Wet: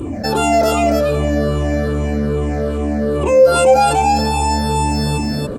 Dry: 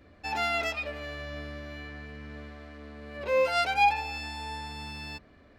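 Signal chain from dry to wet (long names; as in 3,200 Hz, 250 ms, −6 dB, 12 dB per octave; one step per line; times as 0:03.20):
rippled gain that drifts along the octave scale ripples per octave 0.65, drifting −2.5 Hz, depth 16 dB
octave-band graphic EQ 125/250/500/2,000/4,000/8,000 Hz +8/+9/+7/−7/−10/+12 dB
on a send: single-tap delay 284 ms −4 dB
on the sum: dynamic equaliser 2,000 Hz, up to −6 dB, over −45 dBFS, Q 2.1
envelope flattener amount 50%
level +3.5 dB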